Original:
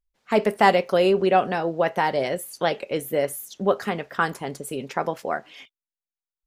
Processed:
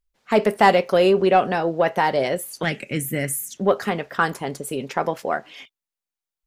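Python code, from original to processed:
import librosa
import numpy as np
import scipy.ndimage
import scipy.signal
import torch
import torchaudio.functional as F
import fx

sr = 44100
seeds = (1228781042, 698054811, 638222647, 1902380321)

p1 = 10.0 ** (-15.0 / 20.0) * np.tanh(x / 10.0 ** (-15.0 / 20.0))
p2 = x + (p1 * 10.0 ** (-7.0 / 20.0))
y = fx.graphic_eq(p2, sr, hz=(125, 250, 500, 1000, 2000, 4000, 8000), db=(9, 5, -10, -10, 8, -8, 9), at=(2.63, 3.57))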